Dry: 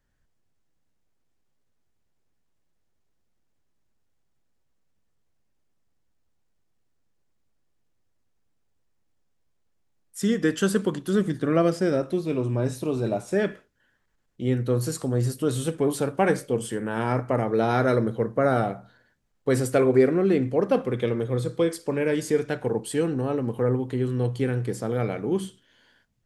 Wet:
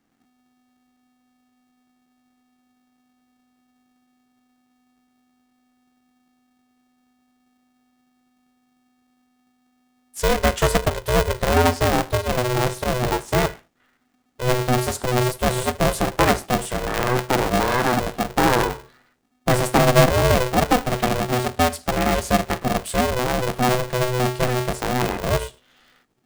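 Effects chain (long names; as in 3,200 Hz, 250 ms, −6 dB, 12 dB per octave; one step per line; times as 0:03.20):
0:17.58–0:18.30: low-shelf EQ 210 Hz −11.5 dB
ring modulator with a square carrier 250 Hz
level +4 dB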